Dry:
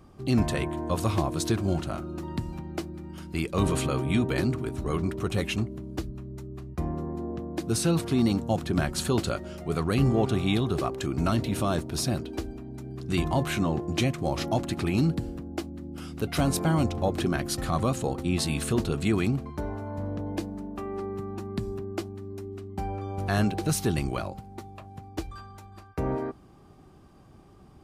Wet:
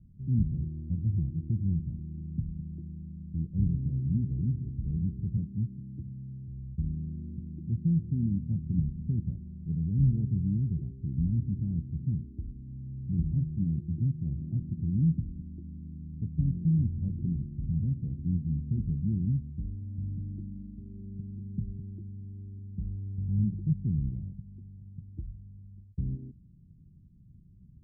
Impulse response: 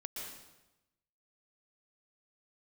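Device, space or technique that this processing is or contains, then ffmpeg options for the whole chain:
the neighbour's flat through the wall: -filter_complex "[0:a]asettb=1/sr,asplit=3[link_01][link_02][link_03];[link_01]atrim=end=5.374[link_04];[link_02]atrim=start=5.37:end=6.48,asetpts=PTS-STARTPTS,afade=type=in:duration=0.004:curve=qsin,afade=type=out:start_time=1.106:duration=0.004:curve=qsin,highpass=frequency=87:width=0.5412,highpass=frequency=87:width=1.3066[link_05];[link_03]atrim=start=6.476[link_06];[link_04][link_05]acrossfade=duration=0.004:curve1=hsin:curve2=qsin[link_07];[link_07][link_06]acrossfade=duration=0.004:curve1=qsin:curve2=hsin,lowpass=frequency=180:width=0.5412,lowpass=frequency=180:width=1.3066,equalizer=frequency=180:width_type=o:width=0.77:gain=3"

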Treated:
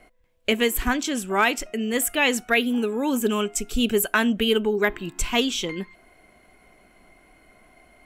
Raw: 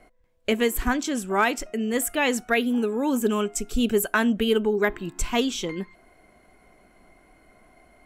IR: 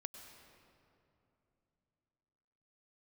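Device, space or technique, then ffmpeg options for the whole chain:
presence and air boost: -af "equalizer=frequency=2800:width_type=o:width=1.1:gain=5.5,highshelf=frequency=9100:gain=5"

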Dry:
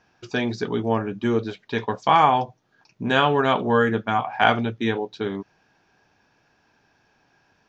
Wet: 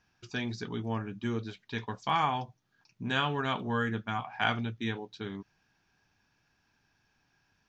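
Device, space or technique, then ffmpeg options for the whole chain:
smiley-face EQ: -af "lowshelf=frequency=86:gain=7.5,equalizer=frequency=530:width_type=o:width=1.6:gain=-8.5,highshelf=frequency=5500:gain=4.5,volume=-8dB"

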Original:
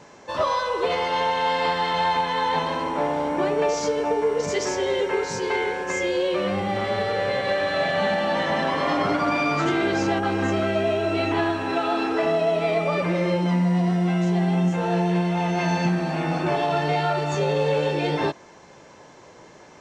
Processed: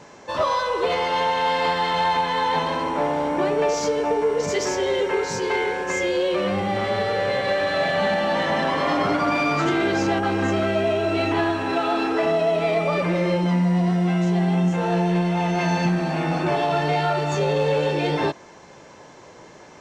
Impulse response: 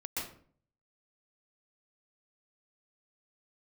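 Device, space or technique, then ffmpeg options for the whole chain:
parallel distortion: -filter_complex "[0:a]asplit=2[link_01][link_02];[link_02]asoftclip=type=hard:threshold=-26dB,volume=-10.5dB[link_03];[link_01][link_03]amix=inputs=2:normalize=0"

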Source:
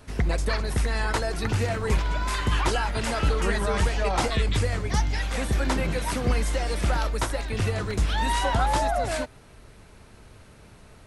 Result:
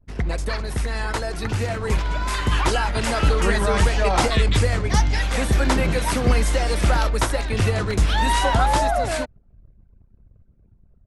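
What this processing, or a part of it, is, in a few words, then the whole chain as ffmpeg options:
voice memo with heavy noise removal: -af "anlmdn=0.158,dynaudnorm=framelen=380:gausssize=13:maxgain=6dB"

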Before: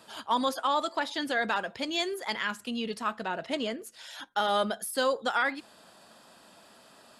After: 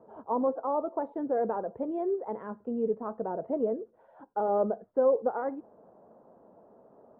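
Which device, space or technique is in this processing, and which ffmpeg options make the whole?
under water: -af "lowpass=frequency=870:width=0.5412,lowpass=frequency=870:width=1.3066,equalizer=frequency=450:width_type=o:width=0.52:gain=9"

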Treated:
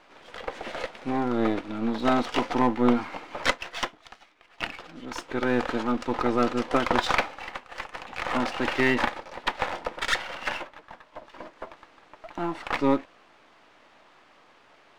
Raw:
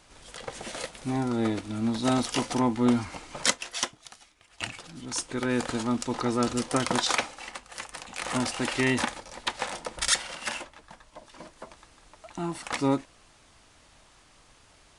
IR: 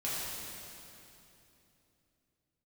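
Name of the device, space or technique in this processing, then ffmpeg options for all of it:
crystal radio: -af "highpass=290,lowpass=2500,aeval=exprs='if(lt(val(0),0),0.447*val(0),val(0))':channel_layout=same,volume=7.5dB"

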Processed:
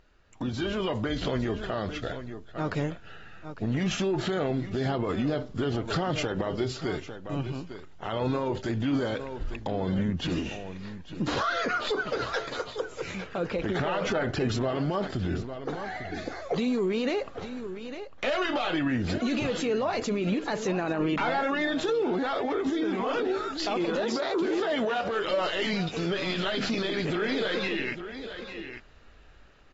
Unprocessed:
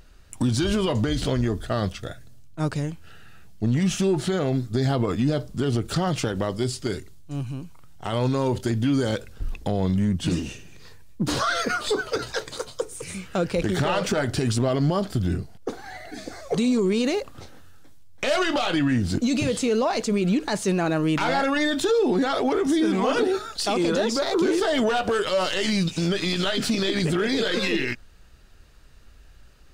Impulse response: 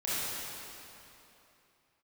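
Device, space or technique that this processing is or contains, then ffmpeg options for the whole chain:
low-bitrate web radio: -filter_complex "[0:a]bass=frequency=250:gain=-7,treble=frequency=4000:gain=-10,asettb=1/sr,asplit=3[link_01][link_02][link_03];[link_01]atrim=end=13.154[link_04];[link_02]atrim=start=13.15:end=14.49,asetpts=PTS-STARTPTS,afade=type=in:duration=0.004:curve=qsin,afade=type=out:start_time=1.336:duration=0.004:curve=qsin,equalizer=frequency=9900:width_type=o:width=3:gain=-4.5[link_05];[link_03]atrim=start=14.486[link_06];[link_04][link_05]acrossfade=duration=0.004:curve1=hsin:curve2=qsin[link_07];[link_07][link_06]acrossfade=duration=0.004:curve1=qsin:curve2=hsin,asettb=1/sr,asplit=3[link_08][link_09][link_10];[link_08]atrim=end=24.014[link_11];[link_09]atrim=start=24.01:end=25.12,asetpts=PTS-STARTPTS,afade=type=in:duration=0.004:curve=qsin,afade=type=out:start_time=1.106:duration=0.004:curve=qsin,highpass=64[link_12];[link_10]atrim=start=25.116[link_13];[link_11][link_12]acrossfade=duration=0.004:curve1=hsin:curve2=qsin[link_14];[link_14][link_13]acrossfade=duration=0.004:curve1=qsin:curve2=hsin,aecho=1:1:851:0.168,dynaudnorm=framelen=220:gausssize=11:maxgain=8.5dB,alimiter=limit=-14.5dB:level=0:latency=1:release=56,volume=-6dB" -ar 44100 -c:a aac -b:a 24k

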